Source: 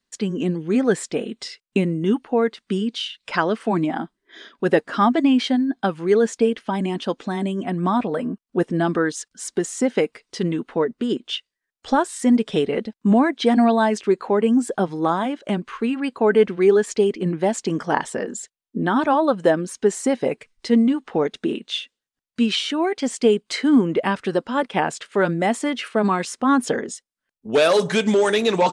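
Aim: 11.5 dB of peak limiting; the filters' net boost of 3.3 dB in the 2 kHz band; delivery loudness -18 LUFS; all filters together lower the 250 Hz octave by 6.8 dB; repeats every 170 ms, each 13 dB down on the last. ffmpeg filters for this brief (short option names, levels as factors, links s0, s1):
-af "equalizer=f=250:t=o:g=-8.5,equalizer=f=2000:t=o:g=4.5,alimiter=limit=0.224:level=0:latency=1,aecho=1:1:170|340|510:0.224|0.0493|0.0108,volume=2.24"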